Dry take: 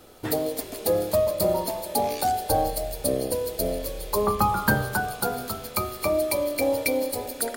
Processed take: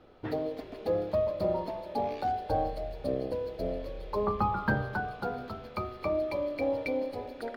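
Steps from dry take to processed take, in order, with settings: distance through air 320 m; trim -5 dB

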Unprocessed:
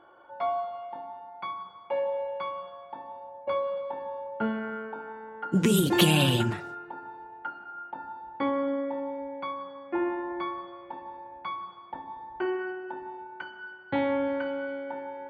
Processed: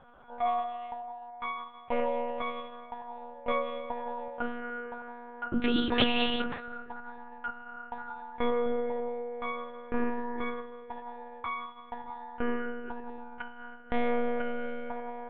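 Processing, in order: monotone LPC vocoder at 8 kHz 240 Hz; 4.28–6.68 s: bass shelf 160 Hz -9 dB

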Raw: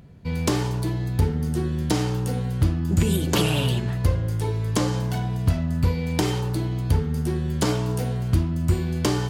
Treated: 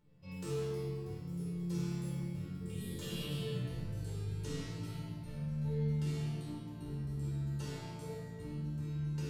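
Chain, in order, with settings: Doppler pass-by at 3.53 s, 37 m/s, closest 17 m; dynamic bell 890 Hz, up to -7 dB, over -48 dBFS, Q 0.91; reverse; compression, threshold -38 dBFS, peak gain reduction 20.5 dB; reverse; chord resonator D3 minor, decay 0.66 s; simulated room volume 2500 m³, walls mixed, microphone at 4.5 m; gain riding within 4 dB 2 s; trim +13 dB

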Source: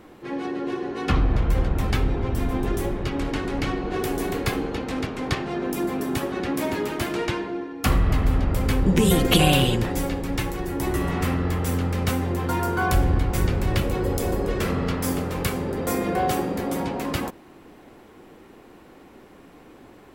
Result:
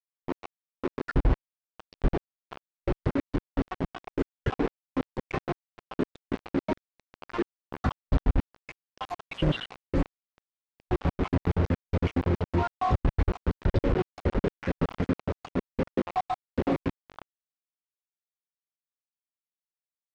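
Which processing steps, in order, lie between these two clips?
random holes in the spectrogram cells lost 77%; reverb removal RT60 1.2 s; peak limiter -18 dBFS, peak gain reduction 11 dB; bit crusher 5-bit; tape spacing loss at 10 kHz 38 dB; trim +4 dB

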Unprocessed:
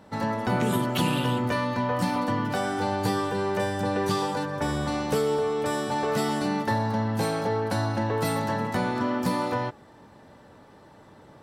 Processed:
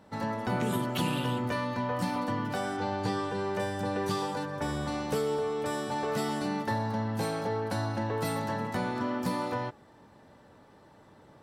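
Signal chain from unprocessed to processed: 2.76–3.55 s: low-pass 5.2 kHz -> 9.7 kHz 12 dB/octave; trim -5 dB

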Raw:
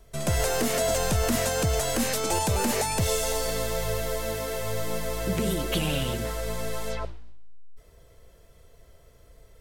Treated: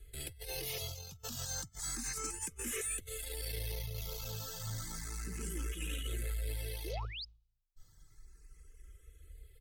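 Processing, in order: reverb removal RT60 0.76 s; amplifier tone stack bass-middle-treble 6-0-2; hum notches 50/100/150 Hz; comb 2.4 ms, depth 66%; compressor with a negative ratio -46 dBFS, ratio -0.5; valve stage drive 43 dB, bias 0.3; painted sound rise, 6.84–7.25 s, 290–5300 Hz -54 dBFS; barber-pole phaser +0.32 Hz; trim +12 dB

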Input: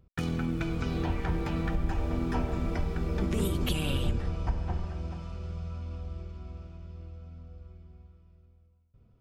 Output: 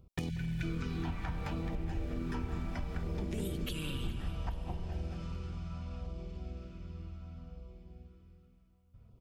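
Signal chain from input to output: LFO notch saw down 0.66 Hz 310–1800 Hz; spectral selection erased 0.30–0.63 s, 210–1400 Hz; compression, threshold -35 dBFS, peak gain reduction 12.5 dB; feedback delay 417 ms, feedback 49%, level -16.5 dB; on a send at -10 dB: reverberation RT60 1.8 s, pre-delay 186 ms; on the sum: trim +2 dB

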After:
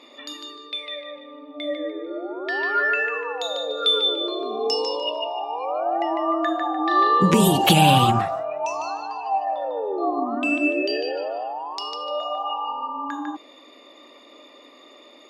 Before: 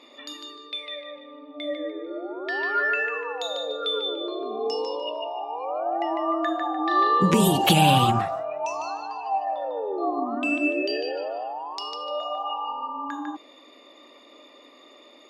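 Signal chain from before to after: 3.77–6.02 s: treble shelf 2.7 kHz +10 dB; trim +2.5 dB

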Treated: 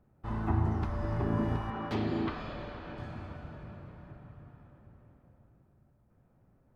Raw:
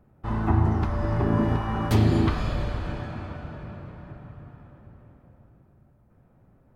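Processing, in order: 1.70–2.98 s: three-band isolator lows -12 dB, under 180 Hz, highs -22 dB, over 4.9 kHz; trim -7.5 dB

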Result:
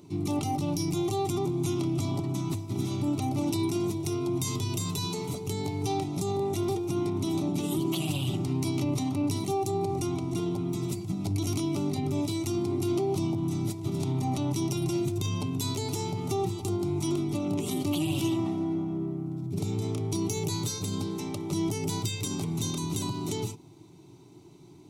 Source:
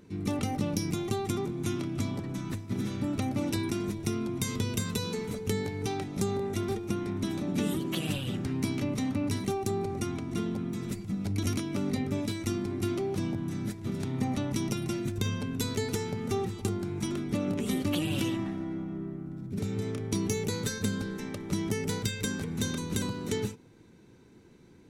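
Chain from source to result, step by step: high-pass 41 Hz; peak limiter -25 dBFS, peak gain reduction 8.5 dB; static phaser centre 330 Hz, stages 8; trim +7 dB

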